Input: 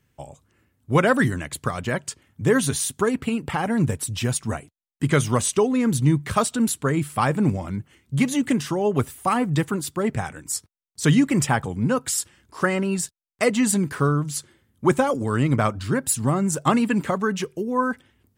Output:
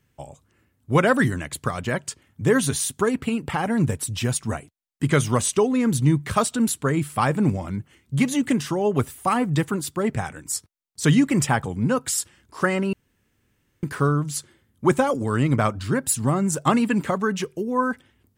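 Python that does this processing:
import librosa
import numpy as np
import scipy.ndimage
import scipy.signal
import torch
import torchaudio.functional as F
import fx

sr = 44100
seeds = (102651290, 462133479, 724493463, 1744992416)

y = fx.edit(x, sr, fx.room_tone_fill(start_s=12.93, length_s=0.9), tone=tone)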